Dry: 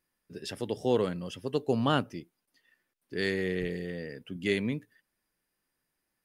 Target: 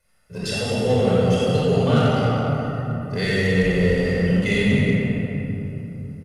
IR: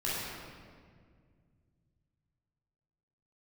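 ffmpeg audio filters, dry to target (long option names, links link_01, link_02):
-filter_complex "[0:a]aecho=1:1:1.5:0.72,asplit=2[link_01][link_02];[link_02]aeval=exprs='val(0)*gte(abs(val(0)),0.0141)':channel_layout=same,volume=-9dB[link_03];[link_01][link_03]amix=inputs=2:normalize=0,acompressor=threshold=-39dB:ratio=2[link_04];[1:a]atrim=start_sample=2205,asetrate=23814,aresample=44100[link_05];[link_04][link_05]afir=irnorm=-1:irlink=0,acrossover=split=560|2400[link_06][link_07][link_08];[link_07]asoftclip=type=tanh:threshold=-32.5dB[link_09];[link_06][link_09][link_08]amix=inputs=3:normalize=0,volume=6.5dB"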